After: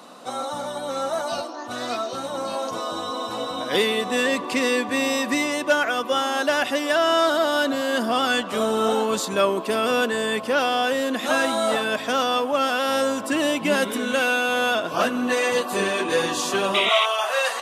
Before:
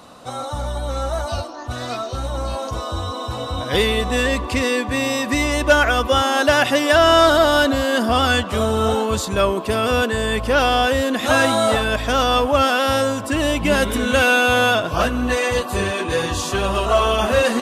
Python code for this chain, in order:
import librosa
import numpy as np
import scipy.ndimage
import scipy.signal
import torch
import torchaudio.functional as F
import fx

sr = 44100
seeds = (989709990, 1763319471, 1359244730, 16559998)

y = fx.highpass(x, sr, hz=fx.steps((0.0, 190.0), (16.89, 640.0)), slope=24)
y = fx.rider(y, sr, range_db=3, speed_s=0.5)
y = fx.spec_paint(y, sr, seeds[0], shape='noise', start_s=16.74, length_s=0.32, low_hz=1900.0, high_hz=3900.0, level_db=-19.0)
y = y * librosa.db_to_amplitude(-3.5)